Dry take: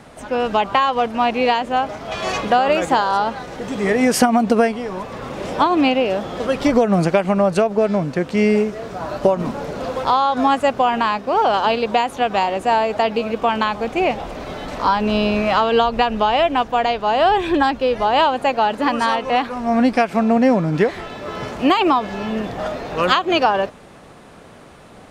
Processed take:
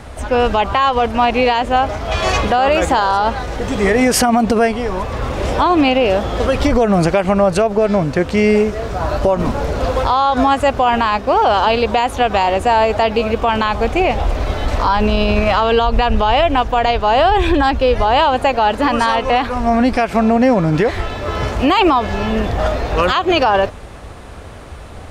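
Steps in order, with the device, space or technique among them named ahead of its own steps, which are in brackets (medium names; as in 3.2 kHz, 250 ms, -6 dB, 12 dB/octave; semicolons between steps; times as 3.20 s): car stereo with a boomy subwoofer (resonant low shelf 110 Hz +12.5 dB, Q 1.5; peak limiter -11.5 dBFS, peak gain reduction 10 dB); trim +6.5 dB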